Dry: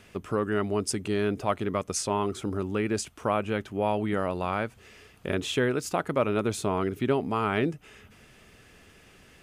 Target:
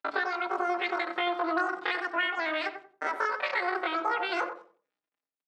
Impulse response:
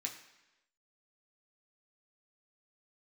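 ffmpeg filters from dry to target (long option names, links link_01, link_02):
-filter_complex "[0:a]asetrate=75852,aresample=44100,highshelf=frequency=2300:gain=-9,aeval=exprs='val(0)*gte(abs(val(0)),0.00422)':channel_layout=same,agate=range=-22dB:threshold=-47dB:ratio=16:detection=peak,acompressor=threshold=-30dB:ratio=4,aemphasis=mode=reproduction:type=75kf,asetrate=88200,aresample=44100,atempo=0.5,highpass=220,lowpass=3700,asplit=2[link_01][link_02];[link_02]adelay=91,lowpass=frequency=880:poles=1,volume=-5.5dB,asplit=2[link_03][link_04];[link_04]adelay=91,lowpass=frequency=880:poles=1,volume=0.31,asplit=2[link_05][link_06];[link_06]adelay=91,lowpass=frequency=880:poles=1,volume=0.31,asplit=2[link_07][link_08];[link_08]adelay=91,lowpass=frequency=880:poles=1,volume=0.31[link_09];[link_01][link_03][link_05][link_07][link_09]amix=inputs=5:normalize=0,asplit=2[link_10][link_11];[1:a]atrim=start_sample=2205,atrim=end_sample=6174[link_12];[link_11][link_12]afir=irnorm=-1:irlink=0,volume=-8.5dB[link_13];[link_10][link_13]amix=inputs=2:normalize=0,asplit=2[link_14][link_15];[link_15]adelay=4.6,afreqshift=-0.36[link_16];[link_14][link_16]amix=inputs=2:normalize=1,volume=6.5dB"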